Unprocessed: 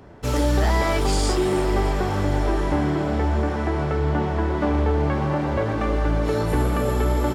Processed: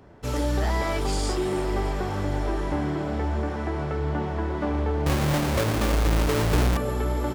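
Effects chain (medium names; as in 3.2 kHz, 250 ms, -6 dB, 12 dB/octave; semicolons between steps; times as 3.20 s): 5.06–6.77 s: square wave that keeps the level; trim -5 dB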